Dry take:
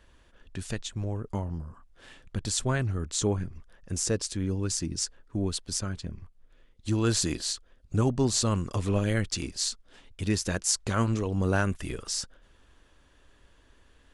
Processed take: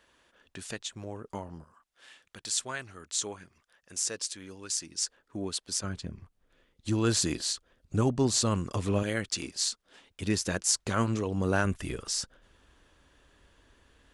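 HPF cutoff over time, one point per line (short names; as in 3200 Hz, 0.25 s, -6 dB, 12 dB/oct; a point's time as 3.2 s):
HPF 6 dB/oct
440 Hz
from 1.64 s 1500 Hz
from 5.03 s 410 Hz
from 5.84 s 99 Hz
from 9.03 s 320 Hz
from 10.22 s 130 Hz
from 11.65 s 41 Hz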